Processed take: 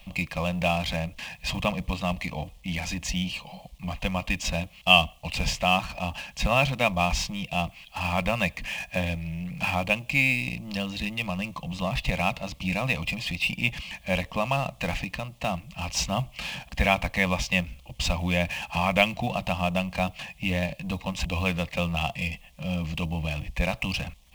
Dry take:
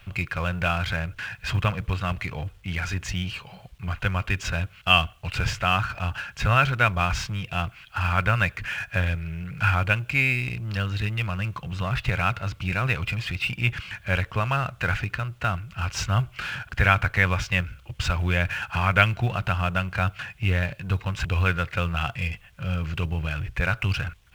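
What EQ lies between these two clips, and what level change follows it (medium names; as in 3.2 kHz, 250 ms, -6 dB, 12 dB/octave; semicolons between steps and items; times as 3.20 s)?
static phaser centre 390 Hz, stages 6; +4.5 dB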